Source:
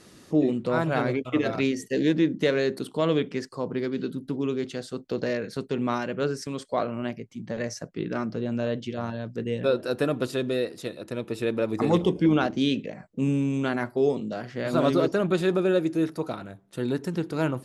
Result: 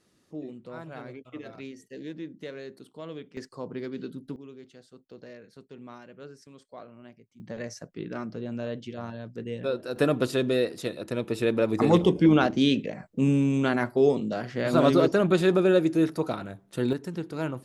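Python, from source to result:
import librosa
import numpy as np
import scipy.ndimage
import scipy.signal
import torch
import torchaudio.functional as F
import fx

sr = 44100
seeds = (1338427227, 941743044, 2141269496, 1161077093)

y = fx.gain(x, sr, db=fx.steps((0.0, -16.0), (3.37, -6.5), (4.36, -18.0), (7.4, -5.5), (9.96, 2.0), (16.93, -5.0)))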